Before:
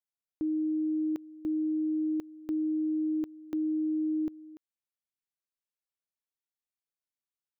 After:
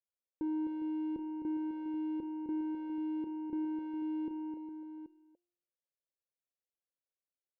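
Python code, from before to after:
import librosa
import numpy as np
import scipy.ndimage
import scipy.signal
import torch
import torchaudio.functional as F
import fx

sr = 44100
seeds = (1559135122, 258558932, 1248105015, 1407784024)

p1 = fx.halfwave_hold(x, sr)
p2 = fx.lowpass_res(p1, sr, hz=540.0, q=4.9)
p3 = fx.comb_fb(p2, sr, f0_hz=350.0, decay_s=0.71, harmonics='all', damping=0.0, mix_pct=70)
y = p3 + fx.echo_multitap(p3, sr, ms=(259, 408, 780), db=(-7.5, -12.0, -12.0), dry=0)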